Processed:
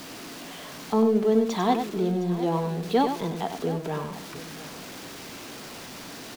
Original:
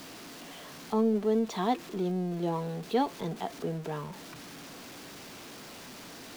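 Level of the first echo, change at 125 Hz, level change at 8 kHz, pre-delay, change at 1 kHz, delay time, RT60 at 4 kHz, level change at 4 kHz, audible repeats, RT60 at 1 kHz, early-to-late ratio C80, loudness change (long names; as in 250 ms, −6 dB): −7.5 dB, +5.5 dB, +6.0 dB, no reverb audible, +6.0 dB, 96 ms, no reverb audible, +6.0 dB, 2, no reverb audible, no reverb audible, +5.5 dB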